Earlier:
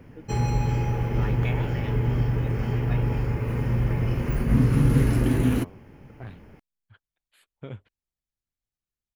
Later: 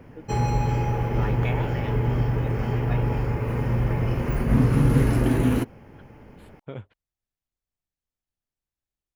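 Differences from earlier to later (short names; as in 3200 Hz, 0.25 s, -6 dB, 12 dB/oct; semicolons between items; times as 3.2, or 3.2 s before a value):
second voice: entry -0.95 s; master: add bell 770 Hz +5 dB 1.9 oct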